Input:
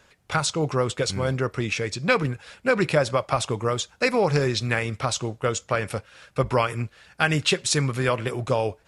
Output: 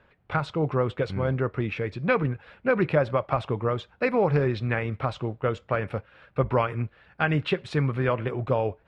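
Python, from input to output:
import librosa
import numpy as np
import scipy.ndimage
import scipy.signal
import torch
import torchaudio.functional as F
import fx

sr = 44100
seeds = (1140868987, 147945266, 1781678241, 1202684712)

y = fx.air_absorb(x, sr, metres=480.0)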